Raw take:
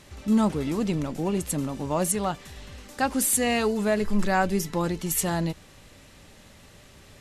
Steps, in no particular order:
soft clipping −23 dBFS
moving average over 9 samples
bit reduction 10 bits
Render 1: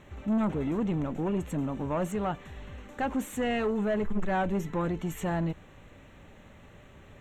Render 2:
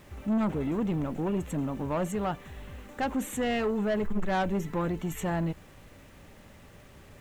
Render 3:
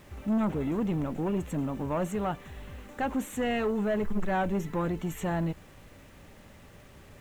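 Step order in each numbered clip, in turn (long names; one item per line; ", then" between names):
bit reduction, then soft clipping, then moving average
moving average, then bit reduction, then soft clipping
soft clipping, then moving average, then bit reduction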